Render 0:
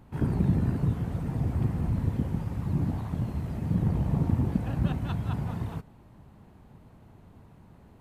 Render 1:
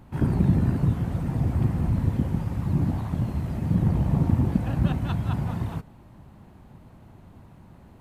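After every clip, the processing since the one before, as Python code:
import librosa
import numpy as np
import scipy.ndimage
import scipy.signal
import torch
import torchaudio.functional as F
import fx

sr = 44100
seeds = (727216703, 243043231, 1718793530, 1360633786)

y = fx.notch(x, sr, hz=440.0, q=12.0)
y = F.gain(torch.from_numpy(y), 4.0).numpy()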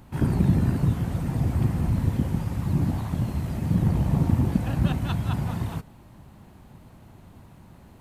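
y = fx.high_shelf(x, sr, hz=2900.0, db=7.5)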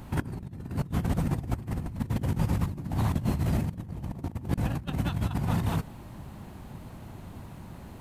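y = fx.over_compress(x, sr, threshold_db=-29.0, ratio=-0.5)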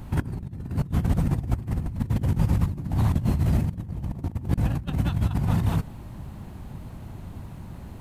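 y = fx.low_shelf(x, sr, hz=150.0, db=8.0)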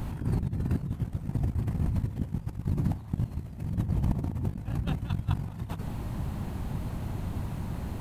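y = fx.over_compress(x, sr, threshold_db=-29.0, ratio=-0.5)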